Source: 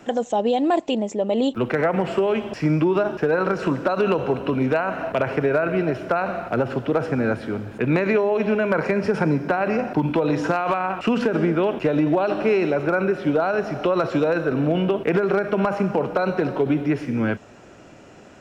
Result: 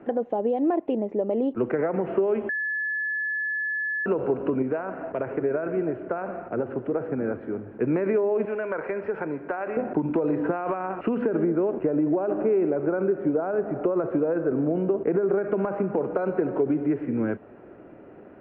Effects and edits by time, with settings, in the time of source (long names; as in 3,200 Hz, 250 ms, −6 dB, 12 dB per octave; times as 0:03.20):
0:02.49–0:04.06: beep over 1,720 Hz −14 dBFS
0:04.62–0:07.82: flanger 1.6 Hz, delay 0.1 ms, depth 7 ms, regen −87%
0:08.45–0:09.77: parametric band 180 Hz −14.5 dB 2.8 octaves
0:11.44–0:15.38: low-pass filter 1,400 Hz 6 dB per octave
whole clip: low-pass filter 2,100 Hz 24 dB per octave; downward compressor 3 to 1, threshold −22 dBFS; parametric band 370 Hz +9.5 dB 1.5 octaves; level −6.5 dB